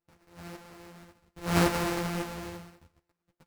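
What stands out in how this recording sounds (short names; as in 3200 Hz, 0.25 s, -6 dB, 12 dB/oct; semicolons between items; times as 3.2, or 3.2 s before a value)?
a buzz of ramps at a fixed pitch in blocks of 256 samples; tremolo saw up 1.8 Hz, depth 55%; aliases and images of a low sample rate 3400 Hz, jitter 20%; a shimmering, thickened sound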